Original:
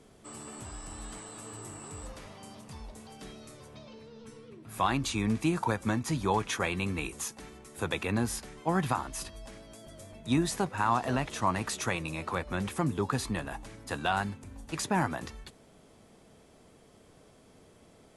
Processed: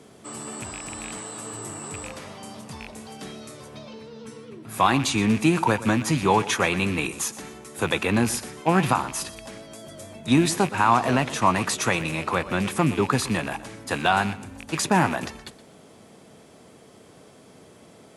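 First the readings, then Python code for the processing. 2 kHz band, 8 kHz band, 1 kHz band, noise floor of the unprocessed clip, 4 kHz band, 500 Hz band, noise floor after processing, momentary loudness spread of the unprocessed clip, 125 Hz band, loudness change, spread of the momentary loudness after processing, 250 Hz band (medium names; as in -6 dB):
+9.0 dB, +8.5 dB, +8.5 dB, -59 dBFS, +9.0 dB, +8.5 dB, -51 dBFS, 19 LU, +6.5 dB, +8.5 dB, 20 LU, +8.5 dB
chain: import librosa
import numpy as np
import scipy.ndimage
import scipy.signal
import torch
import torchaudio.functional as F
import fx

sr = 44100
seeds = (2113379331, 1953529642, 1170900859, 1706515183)

p1 = fx.rattle_buzz(x, sr, strikes_db=-40.0, level_db=-32.0)
p2 = scipy.signal.sosfilt(scipy.signal.butter(2, 110.0, 'highpass', fs=sr, output='sos'), p1)
p3 = p2 + fx.echo_feedback(p2, sr, ms=121, feedback_pct=30, wet_db=-16.5, dry=0)
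y = F.gain(torch.from_numpy(p3), 8.5).numpy()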